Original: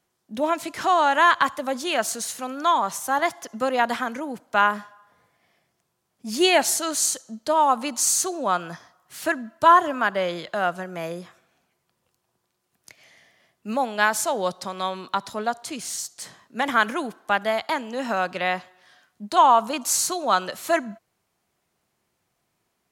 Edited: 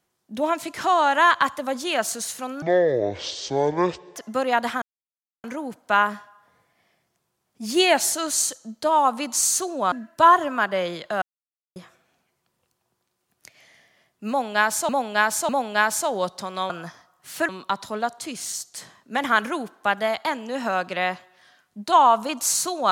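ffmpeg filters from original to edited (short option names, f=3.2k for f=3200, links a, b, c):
-filter_complex "[0:a]asplit=11[a][b][c][d][e][f][g][h][i][j][k];[a]atrim=end=2.624[l];[b]atrim=start=2.62:end=3.42,asetpts=PTS-STARTPTS,asetrate=22932,aresample=44100,atrim=end_sample=67846,asetpts=PTS-STARTPTS[m];[c]atrim=start=3.416:end=4.08,asetpts=PTS-STARTPTS,afade=t=out:st=0.66:d=0.004:c=hsin,apad=pad_dur=0.62[n];[d]atrim=start=4.08:end=8.562,asetpts=PTS-STARTPTS,afade=t=in:d=0.004:c=hsin[o];[e]atrim=start=9.348:end=10.65,asetpts=PTS-STARTPTS,afade=t=out:st=1.298:d=0.004:c=hsin[p];[f]atrim=start=10.65:end=11.19,asetpts=PTS-STARTPTS,volume=0[q];[g]atrim=start=11.19:end=14.322,asetpts=PTS-STARTPTS,afade=t=in:d=0.004:c=hsin[r];[h]atrim=start=13.718:end=14.322[s];[i]atrim=start=13.718:end=14.932[t];[j]atrim=start=8.558:end=9.352[u];[k]atrim=start=14.928[v];[l][m]acrossfade=d=0.004:c1=hsin:c2=hsin[w];[n][o]concat=n=2:v=0:a=1[x];[w][x]acrossfade=d=0.004:c1=hsin:c2=hsin[y];[p][q][r]concat=n=3:v=0:a=1[z];[y][z]acrossfade=d=0.004:c1=hsin:c2=hsin[aa];[aa][s]acrossfade=d=0.004:c1=hsin:c2=hsin[ab];[ab][t]acrossfade=d=0.004:c1=hsin:c2=hsin[ac];[ac][u]acrossfade=d=0.004:c1=hsin:c2=hsin[ad];[ad][v]acrossfade=d=0.004:c1=hsin:c2=hsin"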